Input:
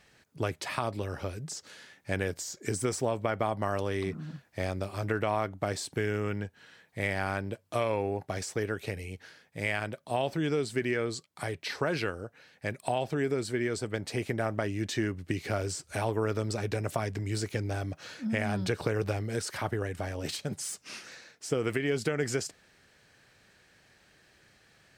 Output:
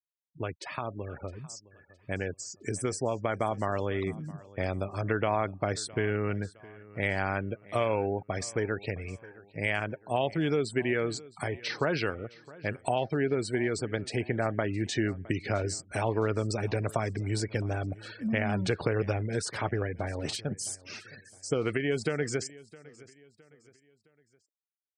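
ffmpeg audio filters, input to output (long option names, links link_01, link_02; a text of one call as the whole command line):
ffmpeg -i in.wav -af "dynaudnorm=framelen=290:gausssize=21:maxgain=5dB,afftfilt=real='re*gte(hypot(re,im),0.0141)':imag='im*gte(hypot(re,im),0.0141)':win_size=1024:overlap=0.75,aecho=1:1:663|1326|1989:0.0891|0.0357|0.0143,volume=-3.5dB" out.wav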